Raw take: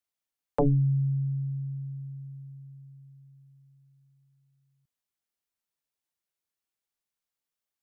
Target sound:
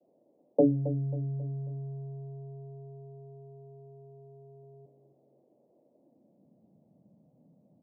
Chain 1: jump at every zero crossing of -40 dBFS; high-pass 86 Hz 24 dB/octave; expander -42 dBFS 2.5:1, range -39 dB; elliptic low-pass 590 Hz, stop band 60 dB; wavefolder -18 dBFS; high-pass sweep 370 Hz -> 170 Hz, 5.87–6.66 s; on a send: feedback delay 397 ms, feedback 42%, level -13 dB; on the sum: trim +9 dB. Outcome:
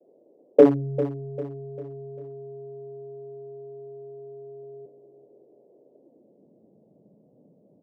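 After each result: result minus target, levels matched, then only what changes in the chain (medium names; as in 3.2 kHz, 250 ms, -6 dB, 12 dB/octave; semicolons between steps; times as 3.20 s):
echo 127 ms late; 500 Hz band +2.5 dB
change: feedback delay 270 ms, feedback 42%, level -13 dB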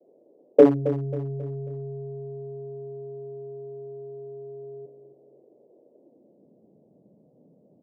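500 Hz band +5.0 dB
add after high-pass: peaking EQ 420 Hz -14.5 dB 0.96 oct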